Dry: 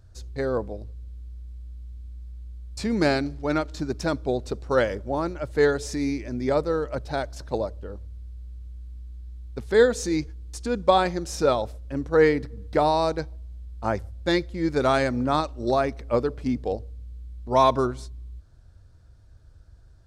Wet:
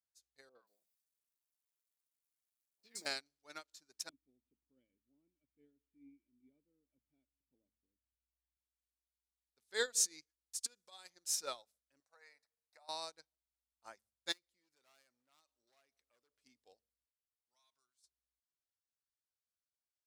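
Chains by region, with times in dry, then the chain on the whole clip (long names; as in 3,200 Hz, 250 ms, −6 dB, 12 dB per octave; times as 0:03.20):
0:00.49–0:03.06: high-pass filter 150 Hz + bit-depth reduction 10 bits, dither none + three-band delay without the direct sound lows, mids, highs 60/180 ms, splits 820/4,000 Hz
0:04.09–0:08.57: formant resonators in series i + spectral tilt −4.5 dB per octave
0:10.58–0:11.10: high-pass filter 44 Hz + high-shelf EQ 4,200 Hz +10.5 dB + downward compressor 12 to 1, threshold −24 dBFS
0:12.00–0:12.89: low shelf with overshoot 480 Hz −10 dB, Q 3 + downward compressor, threshold −27 dBFS + Butterworth band-reject 3,100 Hz, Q 3.5
0:14.32–0:16.38: hard clipping −20 dBFS + downward compressor 4 to 1, threshold −34 dBFS
0:17.06–0:18.04: guitar amp tone stack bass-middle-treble 5-5-5 + downward compressor 2 to 1, threshold −42 dBFS
whole clip: first difference; hum removal 108.7 Hz, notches 2; expander for the loud parts 2.5 to 1, over −52 dBFS; level +4.5 dB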